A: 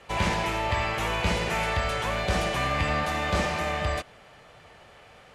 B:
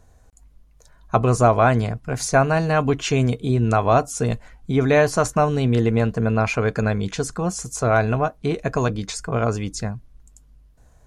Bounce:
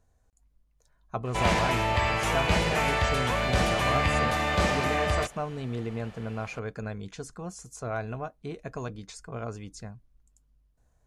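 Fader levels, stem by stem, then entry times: +1.0 dB, -14.5 dB; 1.25 s, 0.00 s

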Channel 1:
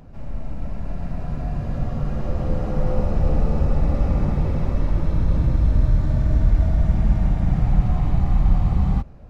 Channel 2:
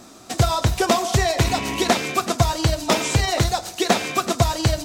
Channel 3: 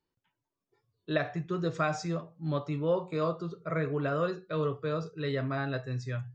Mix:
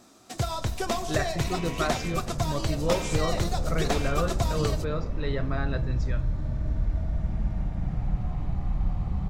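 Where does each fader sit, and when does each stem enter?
-10.0 dB, -10.5 dB, +0.5 dB; 0.35 s, 0.00 s, 0.00 s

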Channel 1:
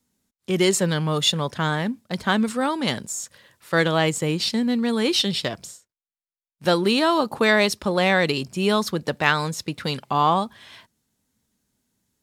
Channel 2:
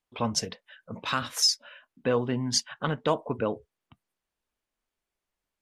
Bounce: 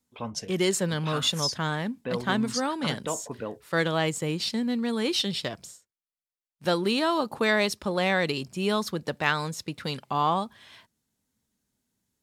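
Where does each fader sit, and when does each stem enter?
-5.5 dB, -6.5 dB; 0.00 s, 0.00 s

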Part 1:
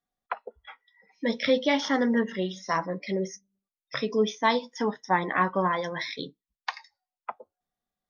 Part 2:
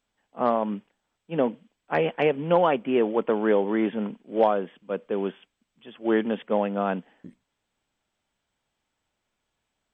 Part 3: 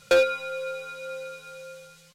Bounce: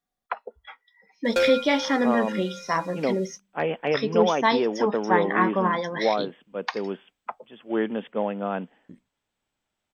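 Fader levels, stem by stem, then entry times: +2.0 dB, -2.5 dB, -3.0 dB; 0.00 s, 1.65 s, 1.25 s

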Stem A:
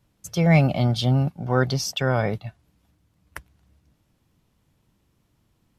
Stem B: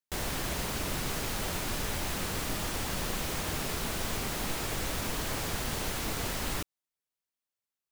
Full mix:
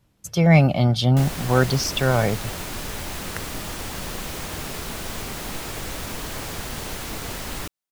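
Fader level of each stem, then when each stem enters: +2.5 dB, +2.0 dB; 0.00 s, 1.05 s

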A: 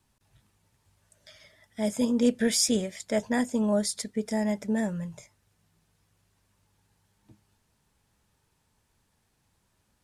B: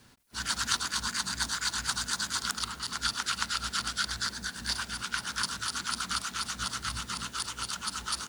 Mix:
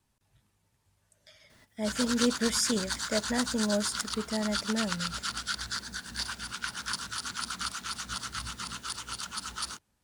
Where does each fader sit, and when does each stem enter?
-4.0 dB, -2.5 dB; 0.00 s, 1.50 s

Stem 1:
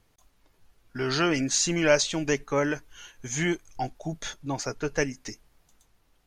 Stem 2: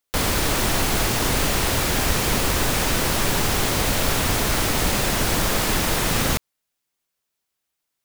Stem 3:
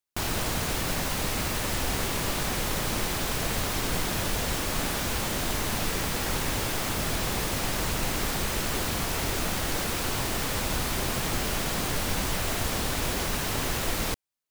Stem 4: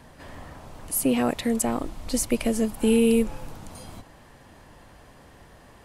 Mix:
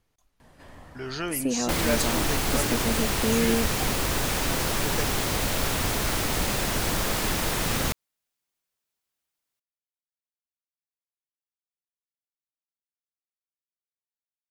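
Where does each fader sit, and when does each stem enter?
-7.0 dB, -5.0 dB, mute, -5.5 dB; 0.00 s, 1.55 s, mute, 0.40 s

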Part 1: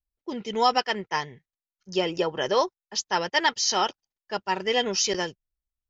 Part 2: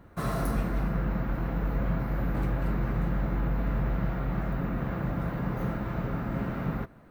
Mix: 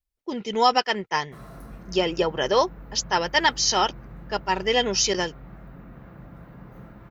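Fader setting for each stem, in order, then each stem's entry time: +2.5 dB, -13.5 dB; 0.00 s, 1.15 s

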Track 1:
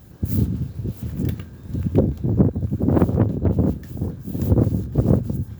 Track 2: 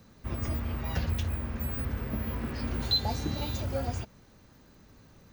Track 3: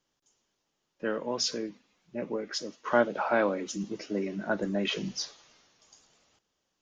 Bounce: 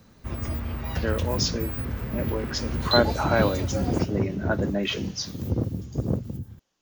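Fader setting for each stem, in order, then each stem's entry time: -9.0 dB, +2.0 dB, +3.0 dB; 1.00 s, 0.00 s, 0.00 s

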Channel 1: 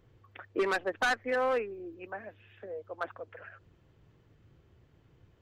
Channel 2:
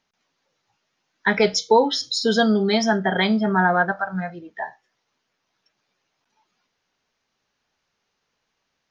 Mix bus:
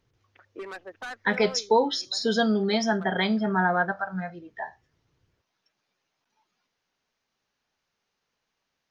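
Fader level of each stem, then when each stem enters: -9.5 dB, -5.0 dB; 0.00 s, 0.00 s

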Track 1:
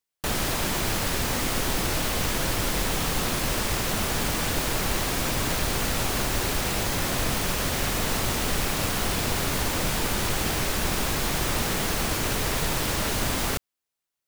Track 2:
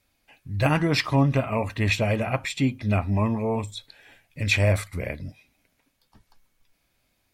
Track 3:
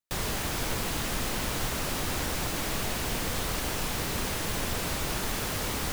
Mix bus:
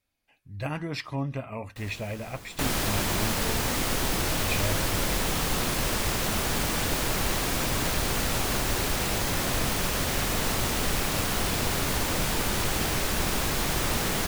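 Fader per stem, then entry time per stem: -1.0 dB, -10.5 dB, -15.5 dB; 2.35 s, 0.00 s, 1.65 s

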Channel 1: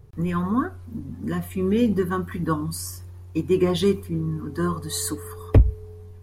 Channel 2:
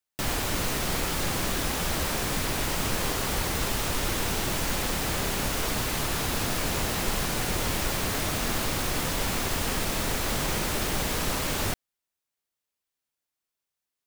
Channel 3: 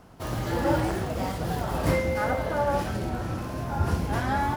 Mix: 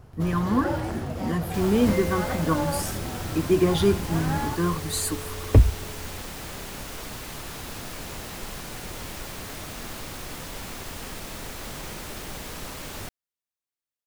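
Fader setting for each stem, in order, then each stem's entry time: -0.5 dB, -8.5 dB, -4.0 dB; 0.00 s, 1.35 s, 0.00 s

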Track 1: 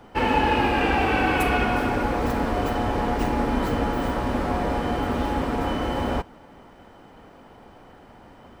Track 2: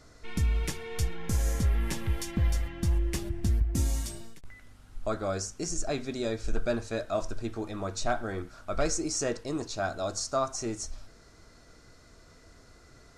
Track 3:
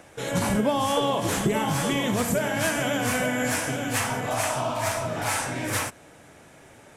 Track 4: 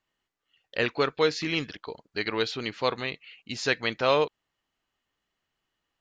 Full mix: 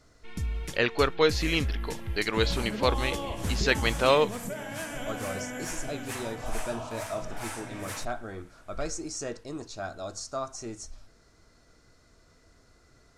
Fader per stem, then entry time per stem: mute, -5.0 dB, -11.5 dB, +1.0 dB; mute, 0.00 s, 2.15 s, 0.00 s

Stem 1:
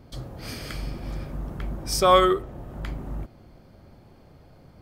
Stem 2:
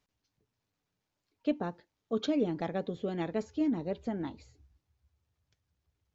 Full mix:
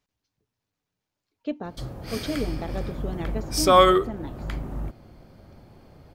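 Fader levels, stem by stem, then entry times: +1.5 dB, 0.0 dB; 1.65 s, 0.00 s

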